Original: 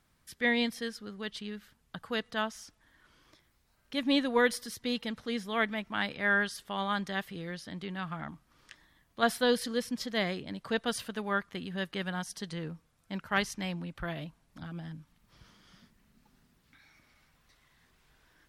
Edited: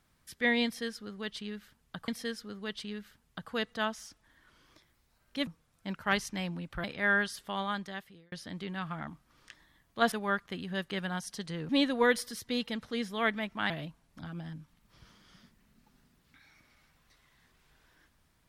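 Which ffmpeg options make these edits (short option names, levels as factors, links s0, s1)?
-filter_complex "[0:a]asplit=8[s0][s1][s2][s3][s4][s5][s6][s7];[s0]atrim=end=2.082[s8];[s1]atrim=start=0.648:end=4.042[s9];[s2]atrim=start=12.718:end=14.092[s10];[s3]atrim=start=6.048:end=7.53,asetpts=PTS-STARTPTS,afade=t=out:st=0.662:d=0.82[s11];[s4]atrim=start=7.53:end=9.332,asetpts=PTS-STARTPTS,afade=t=in:d=0.004:c=hsin[s12];[s5]atrim=start=11.148:end=12.722[s13];[s6]atrim=start=4.038:end=6.052[s14];[s7]atrim=start=14.088[s15];[s8][s9]acrossfade=d=0.004:c1=hsin:c2=hsin[s16];[s16][s10]acrossfade=d=0.004:c1=hsin:c2=hsin[s17];[s11][s12]concat=n=2:v=0:a=1[s18];[s17][s18]acrossfade=d=0.004:c1=hsin:c2=hsin[s19];[s19][s13]acrossfade=d=0.004:c1=hsin:c2=hsin[s20];[s20][s14]acrossfade=d=0.004:c1=hsin:c2=hsin[s21];[s21][s15]acrossfade=d=0.004:c1=hsin:c2=hsin"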